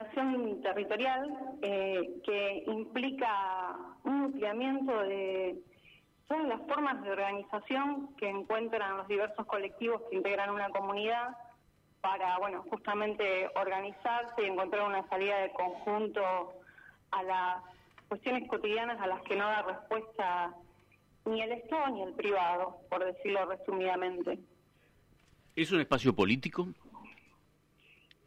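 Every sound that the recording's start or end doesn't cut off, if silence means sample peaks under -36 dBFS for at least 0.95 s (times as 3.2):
25.57–26.7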